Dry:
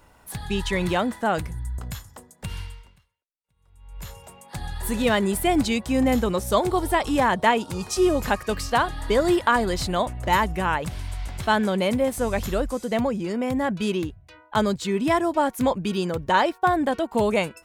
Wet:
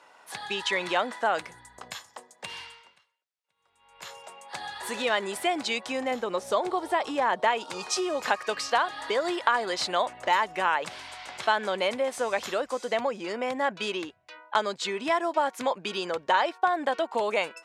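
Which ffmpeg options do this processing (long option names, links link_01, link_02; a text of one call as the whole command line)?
ffmpeg -i in.wav -filter_complex "[0:a]asettb=1/sr,asplit=3[link_01][link_02][link_03];[link_01]atrim=end=1.614[link_04];[link_02]atrim=start=1.61:end=2.64,asetpts=PTS-STARTPTS,afade=type=in:duration=0.004:curve=qsin,afade=type=out:start_time=1.026:duration=0.004:curve=qsin,bandreject=frequency=1400:width=9.6[link_05];[link_03]atrim=start=2.636[link_06];[link_04][link_05]acrossfade=duration=0.004:curve1=hsin:curve2=qsin[link_07];[link_07][link_06]acrossfade=duration=0.004:curve1=qsin:curve2=hsin,asettb=1/sr,asplit=3[link_08][link_09][link_10];[link_08]atrim=end=6.114[link_11];[link_09]atrim=start=6.11:end=7.48,asetpts=PTS-STARTPTS,afade=type=in:duration=0.004:curve=qsin,afade=type=out:start_time=1.366:duration=0.004:curve=qsin,tiltshelf=frequency=970:gain=3.5[link_12];[link_10]atrim=start=7.476[link_13];[link_11][link_12]acrossfade=duration=0.004:curve1=hsin:curve2=qsin[link_14];[link_14][link_13]acrossfade=duration=0.004:curve1=qsin:curve2=hsin,lowpass=6100,acompressor=threshold=-22dB:ratio=6,highpass=570,volume=3.5dB" out.wav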